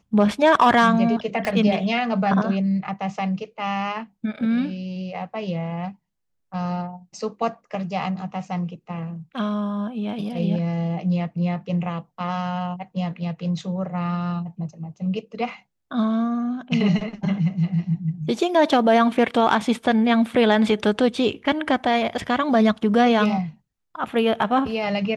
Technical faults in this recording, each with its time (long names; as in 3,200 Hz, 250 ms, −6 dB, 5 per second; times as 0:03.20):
0:01.45: click −13 dBFS